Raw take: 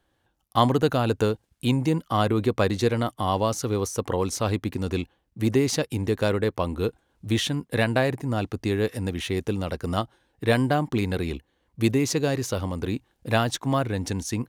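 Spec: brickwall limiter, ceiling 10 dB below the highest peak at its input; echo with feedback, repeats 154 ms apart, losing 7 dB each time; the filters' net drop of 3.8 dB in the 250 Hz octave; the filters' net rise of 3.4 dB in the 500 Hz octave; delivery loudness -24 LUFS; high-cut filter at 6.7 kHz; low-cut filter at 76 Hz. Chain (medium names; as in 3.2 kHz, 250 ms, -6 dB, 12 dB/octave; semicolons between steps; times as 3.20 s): high-pass 76 Hz; low-pass 6.7 kHz; peaking EQ 250 Hz -7 dB; peaking EQ 500 Hz +6 dB; peak limiter -13 dBFS; feedback delay 154 ms, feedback 45%, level -7 dB; trim +2 dB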